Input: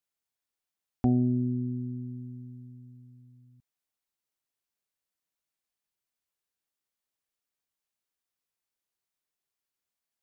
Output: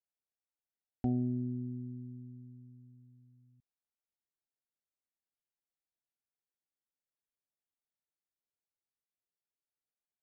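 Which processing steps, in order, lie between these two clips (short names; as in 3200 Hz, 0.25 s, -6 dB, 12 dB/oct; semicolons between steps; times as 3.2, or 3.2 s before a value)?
Wiener smoothing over 15 samples; Butterworth band-stop 1100 Hz, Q 2.9; gain -7.5 dB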